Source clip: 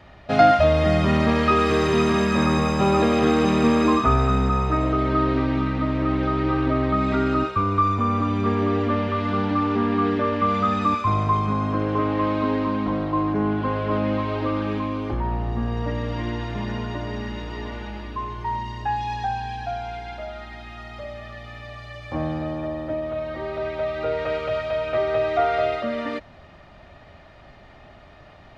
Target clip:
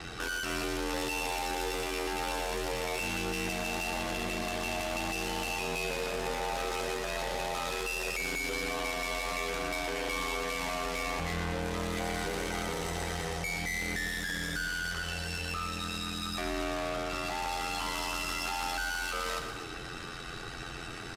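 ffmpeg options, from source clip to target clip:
-af "aecho=1:1:5.6:0.77,adynamicequalizer=threshold=0.00562:dfrequency=6100:dqfactor=1.3:tfrequency=6100:tqfactor=1.3:attack=5:release=100:ratio=0.375:range=2.5:mode=cutabove:tftype=bell,acompressor=threshold=0.112:ratio=20,aeval=exprs='(tanh(100*val(0)+0.3)-tanh(0.3))/100':c=same,asetrate=70004,aresample=44100,atempo=0.629961,aeval=exprs='val(0)*sin(2*PI*32*n/s)':c=same,aecho=1:1:162|324|486|648|810|972:0.398|0.203|0.104|0.0528|0.0269|0.0137,asetrate=59535,aresample=44100,aresample=32000,aresample=44100,volume=2.82"

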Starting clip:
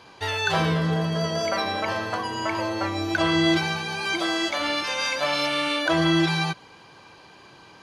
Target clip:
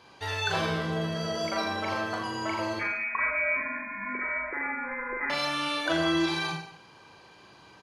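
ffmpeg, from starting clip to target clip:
-filter_complex "[0:a]asettb=1/sr,asplit=3[s0][s1][s2];[s0]atrim=end=2.794[s3];[s1]atrim=start=2.79:end=5.3,asetpts=PTS-STARTPTS,afade=t=in:d=0.004:c=qsin,afade=t=out:st=2.506:d=0.004:c=qsin,lowpass=f=2200:t=q:w=0.5098,lowpass=f=2200:t=q:w=0.6013,lowpass=f=2200:t=q:w=0.9,lowpass=f=2200:t=q:w=2.563,afreqshift=-2600[s4];[s2]atrim=start=5.296[s5];[s3][s4]acrossfade=d=0.004:c1=hsin:c2=qsin[s6];[s6][s5]acrossfade=d=0.004:c1=qsin:c2=hsin,aecho=1:1:40|84|132.4|185.6|244.2:0.631|0.398|0.251|0.158|0.1,volume=0.473"

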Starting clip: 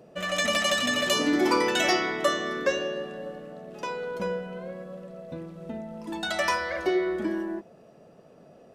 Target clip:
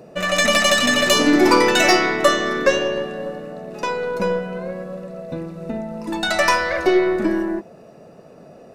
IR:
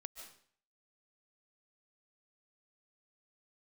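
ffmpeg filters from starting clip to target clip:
-af "asuperstop=centerf=3200:order=4:qfactor=7.6,aeval=exprs='0.282*(cos(1*acos(clip(val(0)/0.282,-1,1)))-cos(1*PI/2))+0.01*(cos(8*acos(clip(val(0)/0.282,-1,1)))-cos(8*PI/2))':c=same,volume=2.82"

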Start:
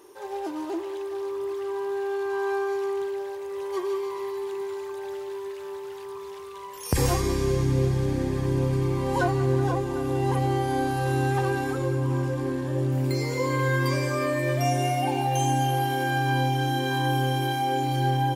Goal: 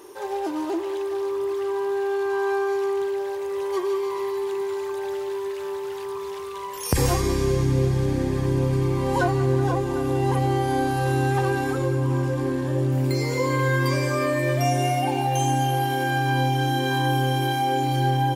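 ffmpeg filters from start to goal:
-filter_complex "[0:a]asplit=2[s0][s1];[s1]acompressor=threshold=0.0224:ratio=6,volume=1.12[s2];[s0][s2]amix=inputs=2:normalize=0,asettb=1/sr,asplit=3[s3][s4][s5];[s3]atrim=end=14.994[s6];[s4]atrim=start=14.99:end=16.38,asetpts=PTS-STARTPTS,afade=t=in:d=0.004:c=qsin,afade=t=out:st=1.386:d=0.004:c=qsin,aeval=exprs='0.282*(cos(1*acos(clip(val(0)/0.282,-1,1)))-cos(1*PI/2))+0.01*(cos(3*acos(clip(val(0)/0.282,-1,1)))-cos(3*PI/2))':c=same[s7];[s5]atrim=start=16.376[s8];[s6][s7]acrossfade=d=0.004:c1=hsin:c2=qsin[s9];[s9][s8]acrossfade=d=0.004:c1=qsin:c2=hsin"

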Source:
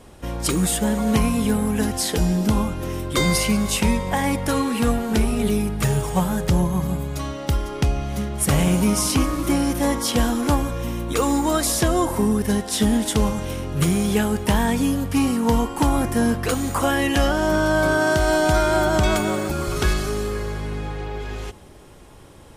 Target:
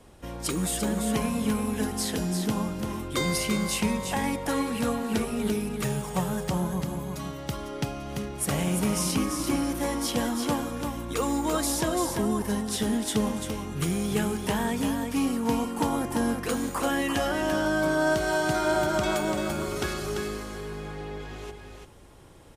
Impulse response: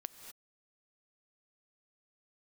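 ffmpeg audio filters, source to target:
-filter_complex "[0:a]acrossover=split=130[s0][s1];[s0]acompressor=threshold=0.02:ratio=5[s2];[s2][s1]amix=inputs=2:normalize=0,aecho=1:1:341:0.531,volume=0.447"

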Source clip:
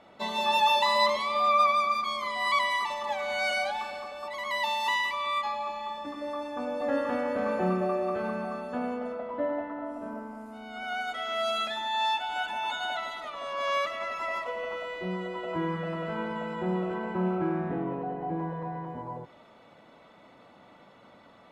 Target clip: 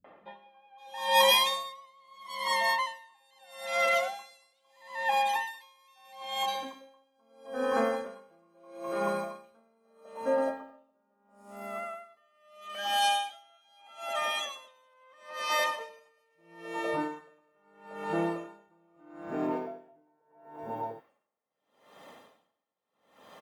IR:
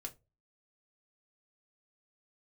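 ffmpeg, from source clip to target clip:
-filter_complex "[0:a]aemphasis=mode=production:type=bsi,acrossover=split=160|2600[s0][s1][s2];[s1]adelay=40[s3];[s2]adelay=520[s4];[s0][s3][s4]amix=inputs=3:normalize=0,asetrate=40517,aresample=44100,aeval=exprs='val(0)*pow(10,-39*(0.5-0.5*cos(2*PI*0.77*n/s))/20)':c=same,volume=1.78"

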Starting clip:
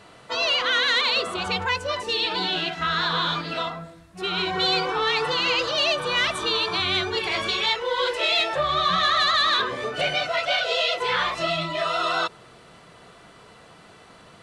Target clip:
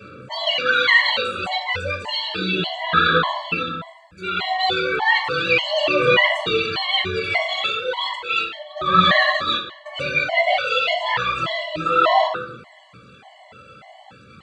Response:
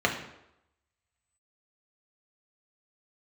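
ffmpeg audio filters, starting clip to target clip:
-filter_complex "[0:a]aphaser=in_gain=1:out_gain=1:delay=1.5:decay=0.59:speed=0.33:type=sinusoidal,asettb=1/sr,asplit=3[s0][s1][s2];[s0]atrim=end=8.154[s3];[s1]atrim=start=8.15:end=9.86,asetpts=PTS-STARTPTS,afade=t=in:d=0.004:c=qsin,afade=t=out:st=1.706:d=0.004:c=qsin,agate=range=0.141:threshold=0.1:ratio=16:detection=peak[s4];[s2]atrim=start=9.856[s5];[s3][s4]acrossfade=d=0.004:c1=hsin:c2=qsin[s6];[s6][s5]acrossfade=d=0.004:c1=qsin:c2=hsin[s7];[1:a]atrim=start_sample=2205,asetrate=48510,aresample=44100[s8];[s7][s8]afir=irnorm=-1:irlink=0,afftfilt=real='re*gt(sin(2*PI*1.7*pts/sr)*(1-2*mod(floor(b*sr/1024/560),2)),0)':imag='im*gt(sin(2*PI*1.7*pts/sr)*(1-2*mod(floor(b*sr/1024/560),2)),0)':win_size=1024:overlap=0.75,volume=0.422"

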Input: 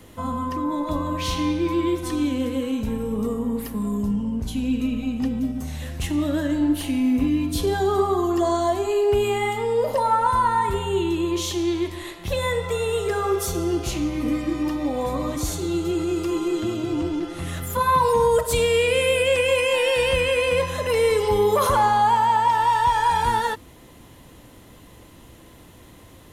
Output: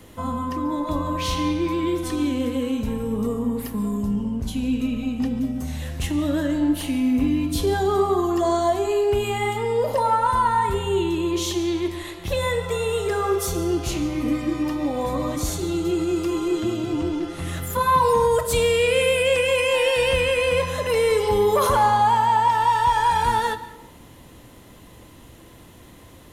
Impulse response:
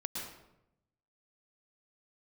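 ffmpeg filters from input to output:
-filter_complex "[0:a]aeval=exprs='0.355*(cos(1*acos(clip(val(0)/0.355,-1,1)))-cos(1*PI/2))+0.00398*(cos(5*acos(clip(val(0)/0.355,-1,1)))-cos(5*PI/2))':c=same,asplit=2[s0][s1];[1:a]atrim=start_sample=2205,adelay=25[s2];[s1][s2]afir=irnorm=-1:irlink=0,volume=0.2[s3];[s0][s3]amix=inputs=2:normalize=0"

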